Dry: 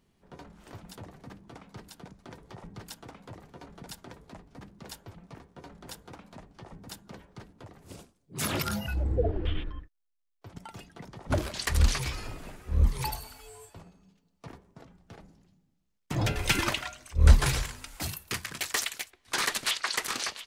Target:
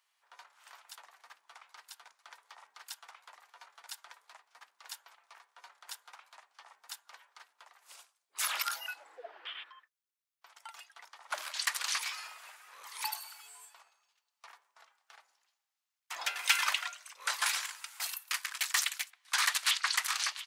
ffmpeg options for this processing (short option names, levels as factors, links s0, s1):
-af "highpass=f=950:w=0.5412,highpass=f=950:w=1.3066"